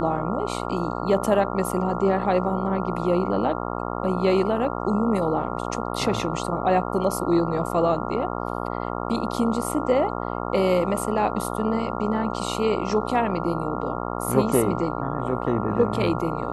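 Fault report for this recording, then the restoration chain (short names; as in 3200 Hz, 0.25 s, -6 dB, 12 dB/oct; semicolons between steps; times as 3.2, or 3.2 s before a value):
buzz 60 Hz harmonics 23 -29 dBFS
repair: de-hum 60 Hz, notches 23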